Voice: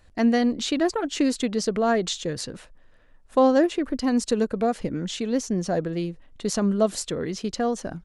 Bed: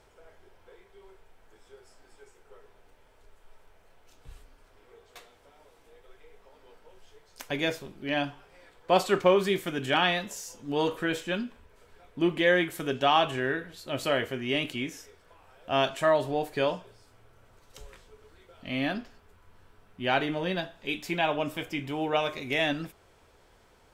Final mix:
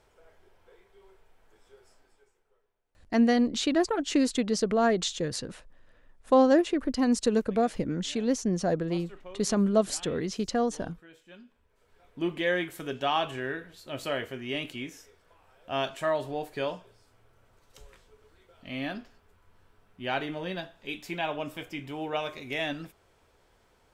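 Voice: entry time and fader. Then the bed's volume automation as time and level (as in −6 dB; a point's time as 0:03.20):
2.95 s, −2.0 dB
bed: 0:01.92 −4 dB
0:02.79 −24.5 dB
0:11.14 −24.5 dB
0:12.08 −4.5 dB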